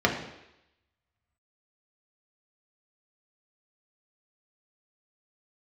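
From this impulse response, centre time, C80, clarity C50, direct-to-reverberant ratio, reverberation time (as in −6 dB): 26 ms, 9.5 dB, 7.0 dB, −0.5 dB, 0.85 s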